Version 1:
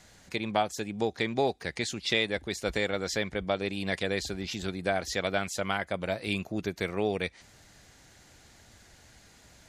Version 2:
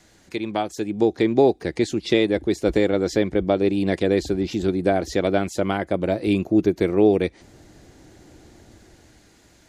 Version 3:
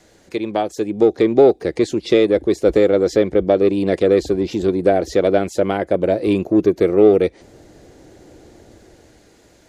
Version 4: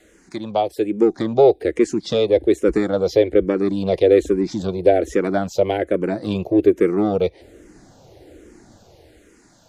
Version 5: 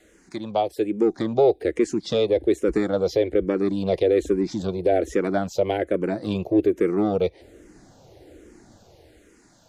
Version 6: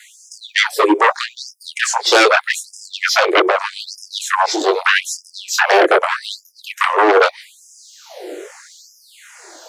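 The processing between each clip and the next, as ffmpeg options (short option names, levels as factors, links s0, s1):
-filter_complex "[0:a]equalizer=f=330:t=o:w=0.59:g=10,acrossover=split=820|1400[s0][s1][s2];[s0]dynaudnorm=f=110:g=17:m=2.82[s3];[s3][s1][s2]amix=inputs=3:normalize=0"
-filter_complex "[0:a]equalizer=f=490:t=o:w=1:g=8.5,asplit=2[s0][s1];[s1]asoftclip=type=tanh:threshold=0.2,volume=0.398[s2];[s0][s2]amix=inputs=2:normalize=0,volume=0.794"
-filter_complex "[0:a]asplit=2[s0][s1];[s1]afreqshift=-1.2[s2];[s0][s2]amix=inputs=2:normalize=1,volume=1.19"
-af "alimiter=level_in=2:limit=0.891:release=50:level=0:latency=1,volume=0.355"
-af "flanger=delay=19:depth=6.6:speed=0.27,aeval=exprs='0.316*sin(PI/2*5.62*val(0)/0.316)':c=same,afftfilt=real='re*gte(b*sr/1024,300*pow(5000/300,0.5+0.5*sin(2*PI*0.81*pts/sr)))':imag='im*gte(b*sr/1024,300*pow(5000/300,0.5+0.5*sin(2*PI*0.81*pts/sr)))':win_size=1024:overlap=0.75,volume=1.58"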